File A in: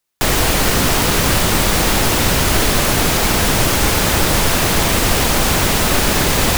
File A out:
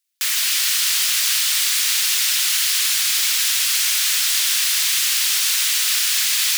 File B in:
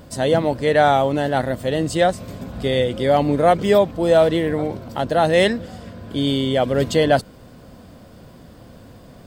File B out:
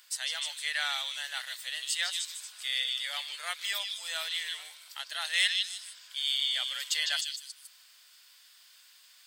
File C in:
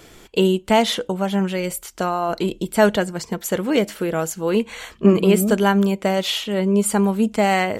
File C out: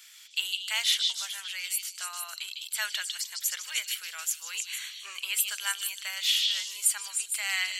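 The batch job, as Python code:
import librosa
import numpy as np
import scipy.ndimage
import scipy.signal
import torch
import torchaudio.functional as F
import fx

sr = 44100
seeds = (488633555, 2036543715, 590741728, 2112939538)

y = scipy.signal.sosfilt(scipy.signal.bessel(4, 2600.0, 'highpass', norm='mag', fs=sr, output='sos'), x)
y = fx.echo_stepped(y, sr, ms=153, hz=4000.0, octaves=0.7, feedback_pct=70, wet_db=-1)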